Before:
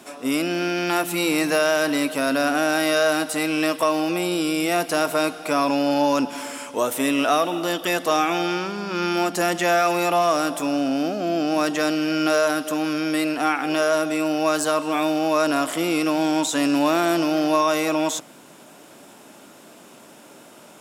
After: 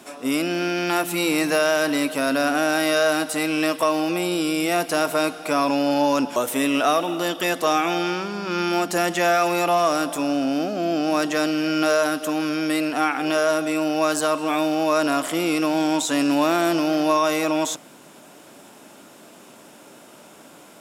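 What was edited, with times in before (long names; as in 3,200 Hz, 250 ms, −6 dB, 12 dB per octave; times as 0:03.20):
0:06.36–0:06.80: remove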